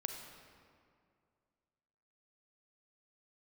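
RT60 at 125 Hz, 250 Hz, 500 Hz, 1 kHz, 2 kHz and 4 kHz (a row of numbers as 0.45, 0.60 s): 2.5, 2.4, 2.4, 2.2, 1.8, 1.4 s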